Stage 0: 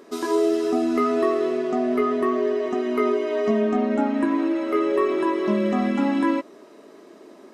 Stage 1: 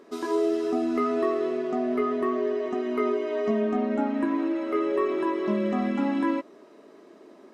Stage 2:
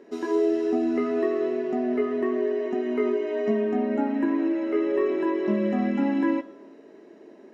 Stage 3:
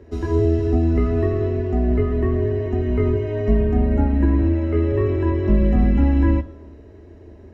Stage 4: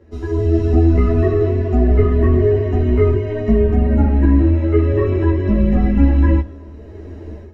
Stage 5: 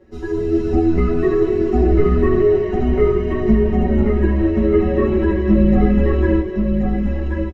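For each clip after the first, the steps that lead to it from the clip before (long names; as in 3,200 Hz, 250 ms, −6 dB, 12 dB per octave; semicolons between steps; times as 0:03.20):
high-shelf EQ 5,400 Hz −7 dB; level −4 dB
convolution reverb RT60 1.1 s, pre-delay 3 ms, DRR 14.5 dB; level −8.5 dB
sub-octave generator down 2 octaves, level 0 dB; low-shelf EQ 160 Hz +11.5 dB
automatic gain control gain up to 14 dB; string-ensemble chorus
comb filter 5.4 ms, depth 91%; on a send: single-tap delay 1,080 ms −4.5 dB; on the sum: level −2.5 dB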